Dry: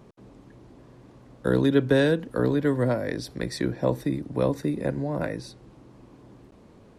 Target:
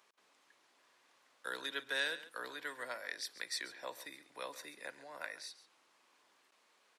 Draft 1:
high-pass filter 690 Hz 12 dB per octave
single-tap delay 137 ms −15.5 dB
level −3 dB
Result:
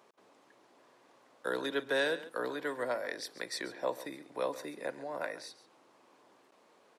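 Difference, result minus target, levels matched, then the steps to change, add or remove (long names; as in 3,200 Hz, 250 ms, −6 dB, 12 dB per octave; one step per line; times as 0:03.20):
500 Hz band +8.0 dB
change: high-pass filter 1,600 Hz 12 dB per octave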